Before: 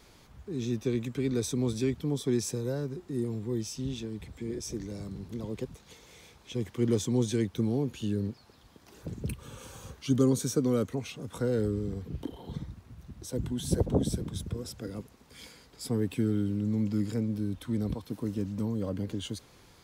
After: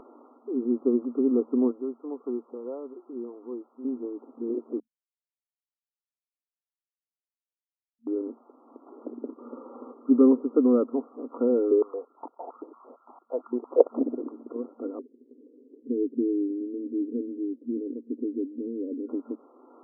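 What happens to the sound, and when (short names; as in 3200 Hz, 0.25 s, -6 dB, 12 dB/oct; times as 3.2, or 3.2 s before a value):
1.71–3.85 HPF 1000 Hz 6 dB/oct
4.8–8.07 mute
9.08–9.64 echo throw 0.29 s, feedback 70%, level -7 dB
11.71–13.98 stepped high-pass 8.8 Hz 410–2200 Hz
14.99–19.09 elliptic band-stop 420–3500 Hz
whole clip: upward compressor, threshold -46 dBFS; FFT band-pass 230–1400 Hz; tilt -2 dB/oct; gain +4 dB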